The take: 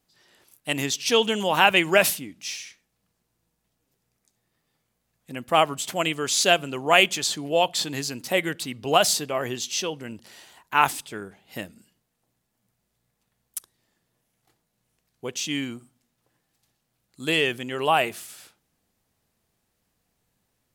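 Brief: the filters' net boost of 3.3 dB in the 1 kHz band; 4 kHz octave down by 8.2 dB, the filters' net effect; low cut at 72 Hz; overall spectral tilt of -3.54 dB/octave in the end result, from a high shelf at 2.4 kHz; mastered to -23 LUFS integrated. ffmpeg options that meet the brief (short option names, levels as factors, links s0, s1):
-af "highpass=72,equalizer=f=1000:t=o:g=5.5,highshelf=f=2400:g=-4,equalizer=f=4000:t=o:g=-9"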